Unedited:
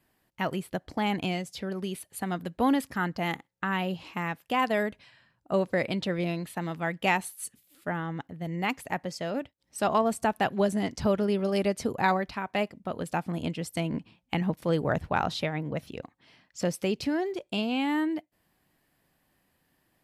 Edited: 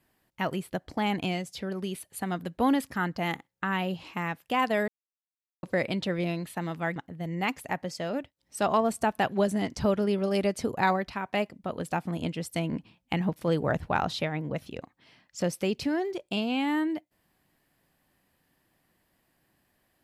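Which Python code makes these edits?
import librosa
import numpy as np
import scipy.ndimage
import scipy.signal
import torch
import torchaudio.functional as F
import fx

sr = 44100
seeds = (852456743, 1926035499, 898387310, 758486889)

y = fx.edit(x, sr, fx.silence(start_s=4.88, length_s=0.75),
    fx.cut(start_s=6.96, length_s=1.21), tone=tone)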